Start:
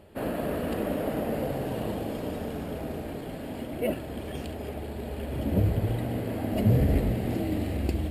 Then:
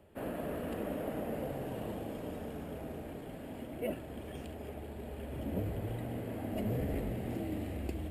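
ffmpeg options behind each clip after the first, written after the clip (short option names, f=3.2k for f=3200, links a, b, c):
-filter_complex "[0:a]equalizer=f=4.4k:w=2.7:g=-6.5,acrossover=split=230|580|6900[a][b][c][d];[a]asoftclip=type=tanh:threshold=-27dB[e];[e][b][c][d]amix=inputs=4:normalize=0,volume=-8dB"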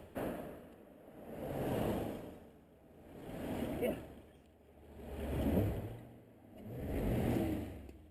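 -af "areverse,acompressor=mode=upward:threshold=-38dB:ratio=2.5,areverse,aeval=exprs='val(0)*pow(10,-25*(0.5-0.5*cos(2*PI*0.55*n/s))/20)':c=same,volume=4dB"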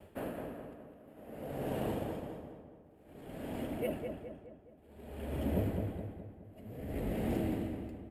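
-filter_complex "[0:a]bandreject=f=60:t=h:w=6,bandreject=f=120:t=h:w=6,agate=range=-33dB:threshold=-53dB:ratio=3:detection=peak,asplit=2[a][b];[b]adelay=209,lowpass=f=2.2k:p=1,volume=-5dB,asplit=2[c][d];[d]adelay=209,lowpass=f=2.2k:p=1,volume=0.5,asplit=2[e][f];[f]adelay=209,lowpass=f=2.2k:p=1,volume=0.5,asplit=2[g][h];[h]adelay=209,lowpass=f=2.2k:p=1,volume=0.5,asplit=2[i][j];[j]adelay=209,lowpass=f=2.2k:p=1,volume=0.5,asplit=2[k][l];[l]adelay=209,lowpass=f=2.2k:p=1,volume=0.5[m];[a][c][e][g][i][k][m]amix=inputs=7:normalize=0"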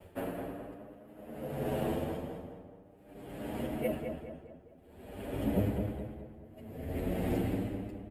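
-filter_complex "[0:a]asplit=2[a][b];[b]adelay=8.6,afreqshift=0.42[c];[a][c]amix=inputs=2:normalize=1,volume=5.5dB"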